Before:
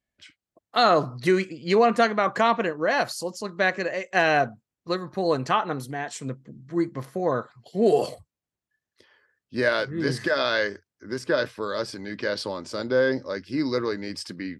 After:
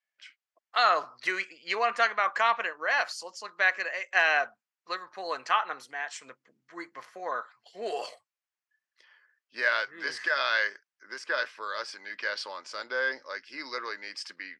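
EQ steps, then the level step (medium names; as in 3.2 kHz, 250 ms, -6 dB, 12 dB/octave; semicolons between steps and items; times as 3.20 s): high-pass 1.2 kHz 12 dB/octave; low-pass 5.1 kHz 12 dB/octave; peaking EQ 3.8 kHz -6 dB 0.5 oct; +2.0 dB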